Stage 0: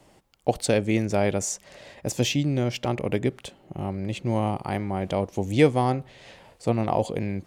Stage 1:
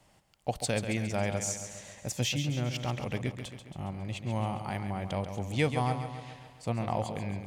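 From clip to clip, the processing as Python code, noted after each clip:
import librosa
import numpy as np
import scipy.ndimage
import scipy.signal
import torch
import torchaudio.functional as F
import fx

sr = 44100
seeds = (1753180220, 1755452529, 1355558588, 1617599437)

y = fx.peak_eq(x, sr, hz=370.0, db=-9.5, octaves=1.3)
y = fx.echo_feedback(y, sr, ms=137, feedback_pct=56, wet_db=-9.0)
y = y * 10.0 ** (-4.5 / 20.0)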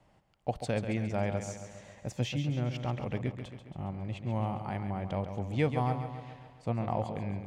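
y = fx.lowpass(x, sr, hz=1500.0, slope=6)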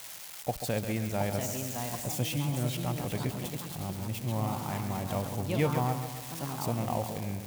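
y = x + 0.5 * 10.0 ** (-29.5 / 20.0) * np.diff(np.sign(x), prepend=np.sign(x[:1]))
y = fx.echo_pitch(y, sr, ms=797, semitones=3, count=2, db_per_echo=-6.0)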